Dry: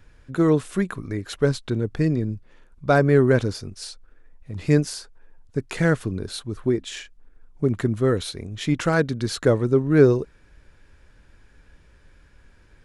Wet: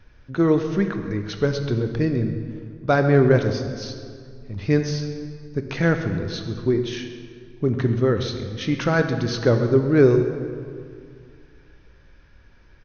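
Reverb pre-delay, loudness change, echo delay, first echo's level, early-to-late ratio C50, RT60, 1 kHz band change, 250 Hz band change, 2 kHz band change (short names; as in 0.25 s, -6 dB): 3 ms, +0.5 dB, 0.134 s, -16.0 dB, 7.0 dB, 2.2 s, +0.5 dB, +1.0 dB, +1.0 dB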